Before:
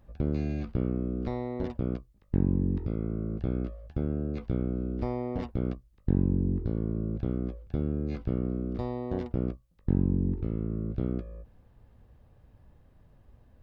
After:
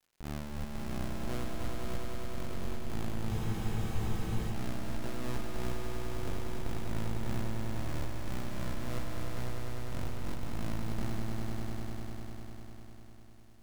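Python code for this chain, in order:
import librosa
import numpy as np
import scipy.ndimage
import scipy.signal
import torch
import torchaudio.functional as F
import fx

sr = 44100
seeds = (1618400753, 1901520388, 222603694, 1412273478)

p1 = fx.high_shelf(x, sr, hz=2100.0, db=-7.5)
p2 = fx.schmitt(p1, sr, flips_db=-30.0)
p3 = p2 * (1.0 - 0.51 / 2.0 + 0.51 / 2.0 * np.cos(2.0 * np.pi * 3.0 * (np.arange(len(p2)) / sr)))
p4 = fx.dmg_crackle(p3, sr, seeds[0], per_s=400.0, level_db=-55.0)
p5 = np.maximum(p4, 0.0)
p6 = p5 + fx.echo_swell(p5, sr, ms=100, loudest=5, wet_db=-6, dry=0)
p7 = fx.spec_freeze(p6, sr, seeds[1], at_s=3.33, hold_s=1.18)
y = p7 * 10.0 ** (-2.5 / 20.0)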